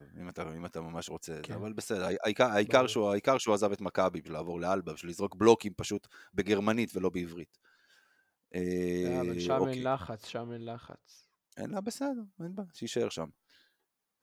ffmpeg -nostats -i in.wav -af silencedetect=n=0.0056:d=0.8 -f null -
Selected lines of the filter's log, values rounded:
silence_start: 7.44
silence_end: 8.54 | silence_duration: 1.10
silence_start: 13.30
silence_end: 14.22 | silence_duration: 0.93